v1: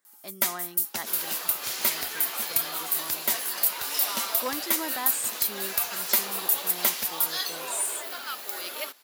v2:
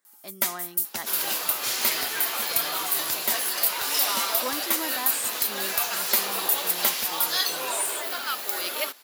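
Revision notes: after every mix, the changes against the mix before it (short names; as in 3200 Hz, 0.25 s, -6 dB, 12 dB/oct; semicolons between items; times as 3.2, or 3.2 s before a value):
second sound +5.5 dB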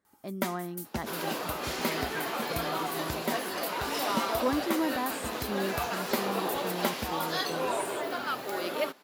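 master: add tilt -4.5 dB/oct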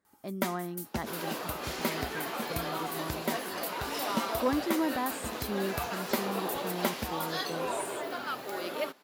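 second sound -3.0 dB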